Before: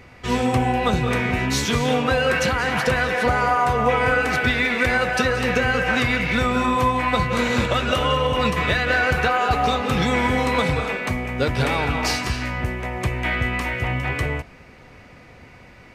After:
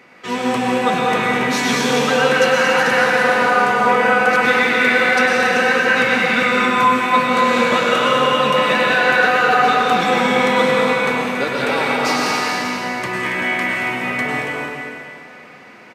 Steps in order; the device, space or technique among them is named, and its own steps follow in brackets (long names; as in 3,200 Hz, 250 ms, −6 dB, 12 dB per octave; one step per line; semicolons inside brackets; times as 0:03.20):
stadium PA (high-pass filter 180 Hz 24 dB per octave; parametric band 1,500 Hz +3.5 dB 2 octaves; loudspeakers that aren't time-aligned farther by 78 metres −9 dB, 96 metres −9 dB; convolution reverb RT60 2.4 s, pre-delay 94 ms, DRR −2 dB)
level −1.5 dB